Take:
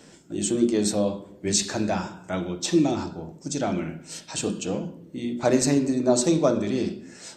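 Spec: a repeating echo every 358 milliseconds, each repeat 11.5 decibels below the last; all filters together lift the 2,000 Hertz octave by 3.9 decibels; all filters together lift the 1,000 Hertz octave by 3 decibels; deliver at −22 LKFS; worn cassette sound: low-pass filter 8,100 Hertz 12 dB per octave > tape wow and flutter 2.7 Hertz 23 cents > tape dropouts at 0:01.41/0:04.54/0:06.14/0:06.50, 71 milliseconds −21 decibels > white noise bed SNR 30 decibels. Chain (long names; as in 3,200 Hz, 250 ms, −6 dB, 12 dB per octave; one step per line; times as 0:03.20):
low-pass filter 8,100 Hz 12 dB per octave
parametric band 1,000 Hz +3.5 dB
parametric band 2,000 Hz +4 dB
repeating echo 358 ms, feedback 27%, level −11.5 dB
tape wow and flutter 2.7 Hz 23 cents
tape dropouts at 0:01.41/0:04.54/0:06.14/0:06.50, 71 ms −21 dB
white noise bed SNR 30 dB
level +3 dB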